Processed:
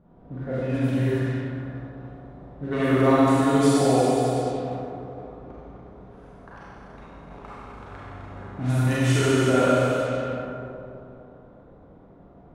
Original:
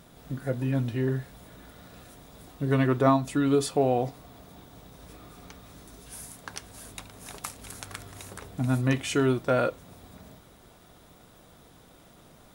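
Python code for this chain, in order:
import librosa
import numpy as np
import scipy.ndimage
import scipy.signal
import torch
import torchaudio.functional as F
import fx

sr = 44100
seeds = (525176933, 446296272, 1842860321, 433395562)

y = fx.rev_schroeder(x, sr, rt60_s=3.3, comb_ms=32, drr_db=-9.5)
y = fx.env_lowpass(y, sr, base_hz=700.0, full_db=-14.5)
y = y * 10.0 ** (-4.0 / 20.0)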